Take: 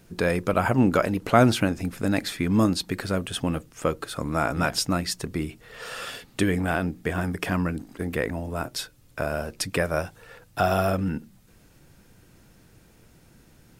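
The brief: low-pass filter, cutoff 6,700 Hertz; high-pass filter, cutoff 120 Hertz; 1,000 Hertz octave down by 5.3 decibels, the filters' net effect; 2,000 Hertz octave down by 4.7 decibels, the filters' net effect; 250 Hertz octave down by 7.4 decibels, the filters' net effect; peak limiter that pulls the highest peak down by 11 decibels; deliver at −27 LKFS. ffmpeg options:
ffmpeg -i in.wav -af "highpass=120,lowpass=6700,equalizer=frequency=250:width_type=o:gain=-9,equalizer=frequency=1000:width_type=o:gain=-6.5,equalizer=frequency=2000:width_type=o:gain=-3.5,volume=6dB,alimiter=limit=-12dB:level=0:latency=1" out.wav

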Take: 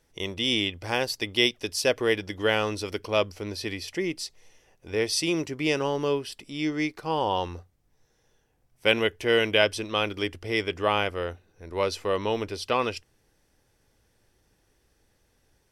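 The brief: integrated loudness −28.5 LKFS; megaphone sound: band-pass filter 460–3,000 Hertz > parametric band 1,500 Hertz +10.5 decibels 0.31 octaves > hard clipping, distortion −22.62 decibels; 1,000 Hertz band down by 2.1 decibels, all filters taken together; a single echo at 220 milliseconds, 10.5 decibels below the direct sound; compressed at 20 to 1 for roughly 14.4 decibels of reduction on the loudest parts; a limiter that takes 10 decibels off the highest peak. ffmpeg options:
ffmpeg -i in.wav -af "equalizer=frequency=1000:width_type=o:gain=-4.5,acompressor=threshold=-31dB:ratio=20,alimiter=level_in=4.5dB:limit=-24dB:level=0:latency=1,volume=-4.5dB,highpass=460,lowpass=3000,equalizer=frequency=1500:width_type=o:width=0.31:gain=10.5,aecho=1:1:220:0.299,asoftclip=type=hard:threshold=-30.5dB,volume=14dB" out.wav

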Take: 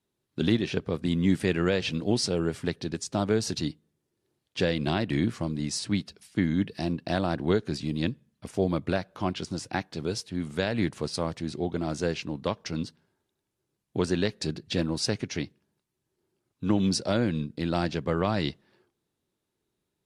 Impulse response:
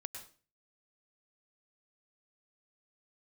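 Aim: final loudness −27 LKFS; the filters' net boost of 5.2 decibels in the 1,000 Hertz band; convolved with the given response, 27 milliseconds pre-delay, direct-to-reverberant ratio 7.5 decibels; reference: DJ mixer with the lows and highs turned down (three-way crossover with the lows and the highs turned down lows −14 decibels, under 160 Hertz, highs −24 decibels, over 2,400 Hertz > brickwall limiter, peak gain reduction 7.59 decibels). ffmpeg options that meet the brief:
-filter_complex "[0:a]equalizer=frequency=1000:width_type=o:gain=7.5,asplit=2[link_01][link_02];[1:a]atrim=start_sample=2205,adelay=27[link_03];[link_02][link_03]afir=irnorm=-1:irlink=0,volume=-5dB[link_04];[link_01][link_04]amix=inputs=2:normalize=0,acrossover=split=160 2400:gain=0.2 1 0.0631[link_05][link_06][link_07];[link_05][link_06][link_07]amix=inputs=3:normalize=0,volume=4dB,alimiter=limit=-13.5dB:level=0:latency=1"

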